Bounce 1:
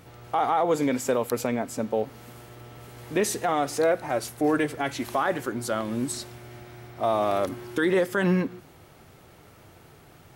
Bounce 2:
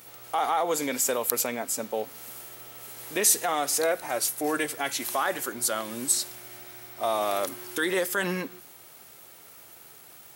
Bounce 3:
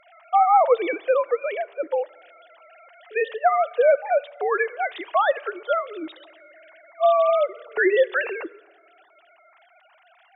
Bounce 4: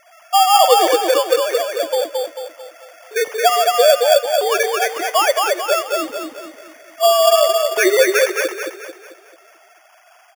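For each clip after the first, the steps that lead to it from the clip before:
RIAA equalisation recording; level −1.5 dB
three sine waves on the formant tracks; on a send at −22 dB: convolution reverb RT60 1.7 s, pre-delay 3 ms; on the sum: level +6 dB
decimation without filtering 11×; on a send: repeating echo 221 ms, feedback 43%, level −3 dB; on the sum: level +4.5 dB

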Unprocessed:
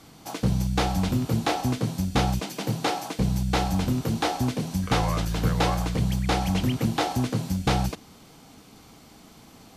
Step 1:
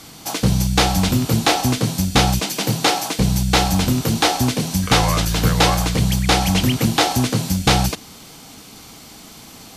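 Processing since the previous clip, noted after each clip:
high-shelf EQ 2,100 Hz +8.5 dB
level +6.5 dB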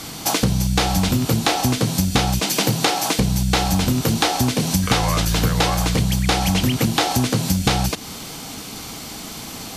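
downward compressor 6 to 1, threshold −23 dBFS, peak gain reduction 12.5 dB
level +7.5 dB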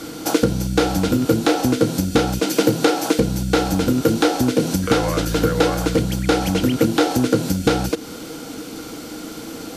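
hollow resonant body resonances 320/470/1,400 Hz, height 16 dB, ringing for 45 ms
level −5 dB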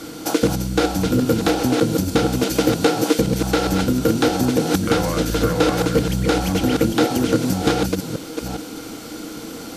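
delay that plays each chunk backwards 408 ms, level −4.5 dB
level −1.5 dB

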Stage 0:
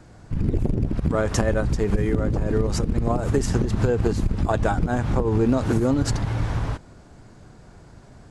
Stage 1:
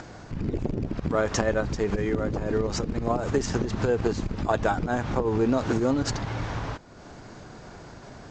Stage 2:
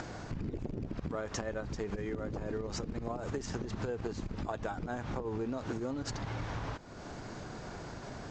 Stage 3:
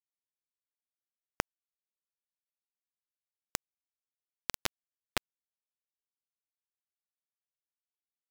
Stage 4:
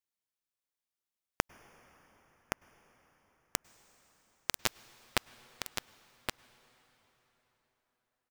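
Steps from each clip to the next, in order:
upward compression, threshold −29 dBFS; Butterworth low-pass 7,200 Hz 48 dB per octave; low-shelf EQ 180 Hz −10.5 dB
downward compressor 5 to 1, threshold −35 dBFS, peak gain reduction 14.5 dB
in parallel at −7 dB: wrap-around overflow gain 36 dB; on the sum: bit reduction 4 bits; level +8.5 dB
single-tap delay 1,120 ms −6 dB; dense smooth reverb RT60 4.8 s, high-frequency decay 0.75×, pre-delay 90 ms, DRR 20 dB; level +2 dB

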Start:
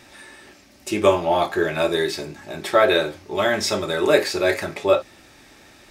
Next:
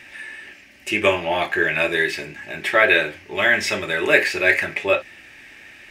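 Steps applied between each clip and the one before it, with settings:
flat-topped bell 2,200 Hz +13.5 dB 1.1 octaves
level −3 dB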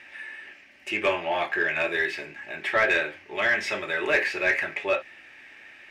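mid-hump overdrive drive 13 dB, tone 1,900 Hz, clips at −1 dBFS
level −9 dB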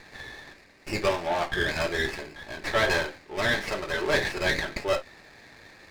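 windowed peak hold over 9 samples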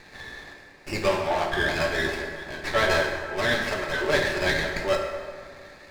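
dense smooth reverb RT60 2 s, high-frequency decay 0.55×, DRR 2.5 dB

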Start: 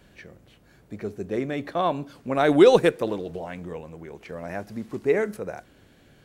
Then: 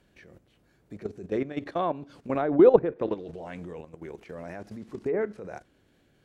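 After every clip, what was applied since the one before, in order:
treble cut that deepens with the level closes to 1,200 Hz, closed at −16.5 dBFS
parametric band 340 Hz +3 dB 0.74 octaves
output level in coarse steps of 13 dB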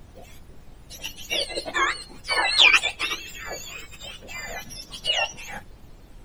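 frequency axis turned over on the octave scale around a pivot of 1,100 Hz
dynamic equaliser 620 Hz, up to +6 dB, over −48 dBFS, Q 0.7
background noise brown −51 dBFS
level +7.5 dB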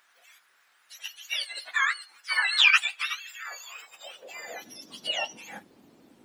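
high-pass filter sweep 1,500 Hz → 250 Hz, 0:03.32–0:04.87
level −6.5 dB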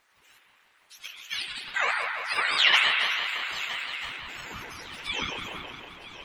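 feedback echo with a long and a short gap by turns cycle 1,289 ms, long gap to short 3 to 1, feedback 32%, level −15 dB
spring reverb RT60 2.9 s, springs 32 ms, chirp 65 ms, DRR −1.5 dB
ring modulator whose carrier an LFO sweeps 400 Hz, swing 55%, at 5.9 Hz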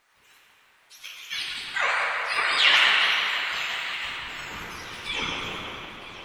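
dense smooth reverb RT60 2 s, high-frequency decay 0.8×, DRR 0 dB

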